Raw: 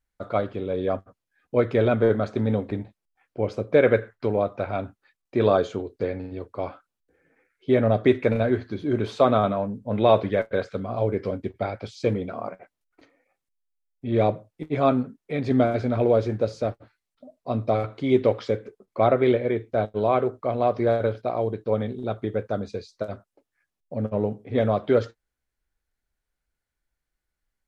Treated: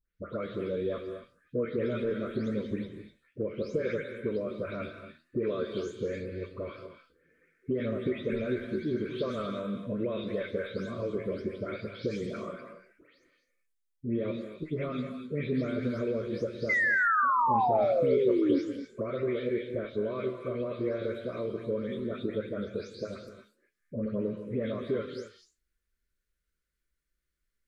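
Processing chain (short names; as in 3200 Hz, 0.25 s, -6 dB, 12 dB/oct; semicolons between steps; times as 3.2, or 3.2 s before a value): spectral delay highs late, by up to 0.237 s; compressor 6:1, threshold -26 dBFS, peak gain reduction 12.5 dB; flange 0.76 Hz, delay 9 ms, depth 7.8 ms, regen +81%; Butterworth band-stop 800 Hz, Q 1.4; painted sound fall, 16.69–18.59, 270–2100 Hz -29 dBFS; non-linear reverb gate 0.28 s rising, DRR 7 dB; gain +3 dB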